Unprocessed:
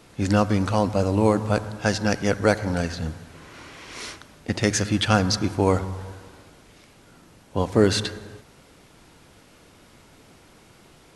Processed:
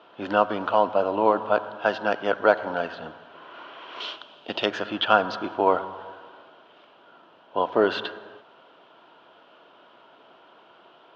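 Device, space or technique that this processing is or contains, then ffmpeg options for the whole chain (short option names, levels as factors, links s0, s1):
phone earpiece: -filter_complex "[0:a]highpass=360,equalizer=f=370:t=q:w=4:g=3,equalizer=f=650:t=q:w=4:g=9,equalizer=f=980:t=q:w=4:g=8,equalizer=f=1400:t=q:w=4:g=7,equalizer=f=2100:t=q:w=4:g=-9,equalizer=f=3100:t=q:w=4:g=9,lowpass=f=3300:w=0.5412,lowpass=f=3300:w=1.3066,asettb=1/sr,asplit=3[s0][s1][s2];[s0]atrim=end=4.004[s3];[s1]atrim=start=4:end=4.66,asetpts=PTS-STARTPTS,afade=t=in:d=0.004:c=qsin,afade=t=out:st=0.656:d=0.004:c=qsin,highshelf=f=2400:t=q:w=1.5:g=7.5[s4];[s2]atrim=start=4.656[s5];[s3][s4]acrossfade=d=0.004:c1=hsin:c2=qsin[s6];[s6][s5]acrossfade=d=0.004:c1=qsin:c2=hsin,volume=0.75"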